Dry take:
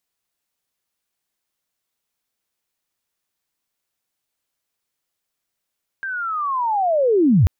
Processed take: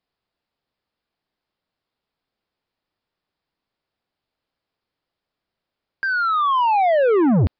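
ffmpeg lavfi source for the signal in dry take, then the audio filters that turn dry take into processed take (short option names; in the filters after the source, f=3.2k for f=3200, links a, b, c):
-f lavfi -i "aevalsrc='pow(10,(-24+14.5*t/1.44)/20)*sin(2*PI*(1600*t-1531*t*t/(2*1.44)))':d=1.44:s=44100"
-filter_complex "[0:a]asplit=2[a][b];[b]adynamicsmooth=sensitivity=7.5:basefreq=1.6k,volume=1dB[c];[a][c]amix=inputs=2:normalize=0,asoftclip=type=tanh:threshold=-14dB,aresample=11025,aresample=44100"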